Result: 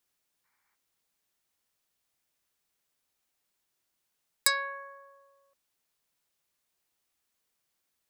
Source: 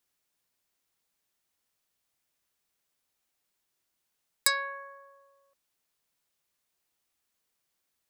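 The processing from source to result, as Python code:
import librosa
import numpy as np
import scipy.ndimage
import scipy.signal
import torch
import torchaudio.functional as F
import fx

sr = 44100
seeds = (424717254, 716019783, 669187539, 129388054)

y = fx.spec_box(x, sr, start_s=0.45, length_s=0.3, low_hz=770.0, high_hz=2400.0, gain_db=12)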